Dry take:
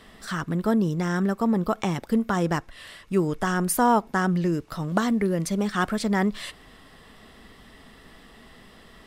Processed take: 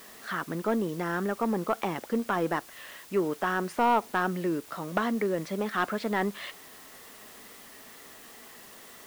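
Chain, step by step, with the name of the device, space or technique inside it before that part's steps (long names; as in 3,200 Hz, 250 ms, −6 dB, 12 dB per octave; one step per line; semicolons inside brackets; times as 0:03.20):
tape answering machine (band-pass filter 310–2,800 Hz; soft clipping −15.5 dBFS, distortion −15 dB; tape wow and flutter; white noise bed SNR 20 dB)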